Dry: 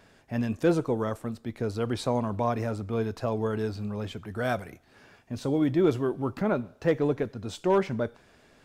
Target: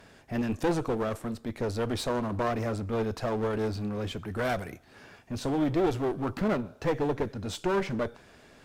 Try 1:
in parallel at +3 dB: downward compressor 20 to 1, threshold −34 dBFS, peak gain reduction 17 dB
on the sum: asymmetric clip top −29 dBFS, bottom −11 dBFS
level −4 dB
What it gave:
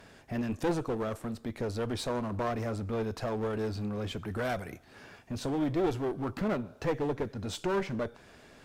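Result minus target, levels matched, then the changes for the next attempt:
downward compressor: peak gain reduction +11 dB
change: downward compressor 20 to 1, threshold −22.5 dBFS, peak gain reduction 6 dB

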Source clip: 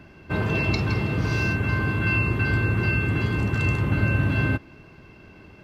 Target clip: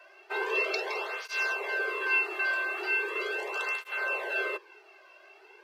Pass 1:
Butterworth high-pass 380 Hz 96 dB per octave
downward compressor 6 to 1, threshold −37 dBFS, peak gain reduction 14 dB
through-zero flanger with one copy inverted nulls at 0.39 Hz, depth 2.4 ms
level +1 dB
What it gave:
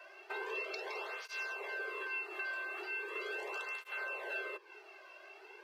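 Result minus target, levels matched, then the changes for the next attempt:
downward compressor: peak gain reduction +14 dB
remove: downward compressor 6 to 1, threshold −37 dBFS, peak gain reduction 14 dB

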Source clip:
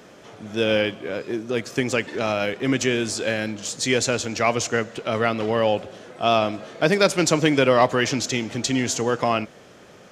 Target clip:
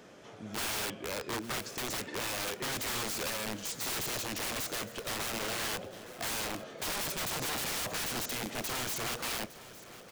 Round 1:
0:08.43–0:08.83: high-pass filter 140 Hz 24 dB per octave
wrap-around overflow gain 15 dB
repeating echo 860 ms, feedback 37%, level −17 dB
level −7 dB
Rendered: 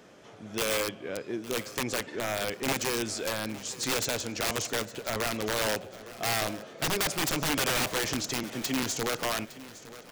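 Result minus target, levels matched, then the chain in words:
wrap-around overflow: distortion −15 dB
0:08.43–0:08.83: high-pass filter 140 Hz 24 dB per octave
wrap-around overflow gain 23 dB
repeating echo 860 ms, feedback 37%, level −17 dB
level −7 dB

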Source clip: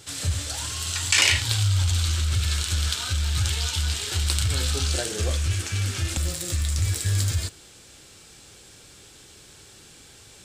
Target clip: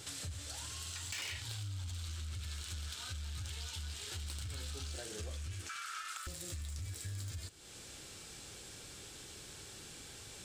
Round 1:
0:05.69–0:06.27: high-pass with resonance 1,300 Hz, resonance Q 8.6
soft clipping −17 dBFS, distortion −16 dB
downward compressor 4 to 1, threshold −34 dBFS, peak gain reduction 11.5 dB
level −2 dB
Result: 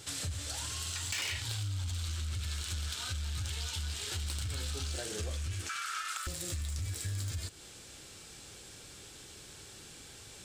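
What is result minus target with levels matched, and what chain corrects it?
downward compressor: peak gain reduction −6 dB
0:05.69–0:06.27: high-pass with resonance 1,300 Hz, resonance Q 8.6
soft clipping −17 dBFS, distortion −16 dB
downward compressor 4 to 1, threshold −42 dBFS, peak gain reduction 17.5 dB
level −2 dB

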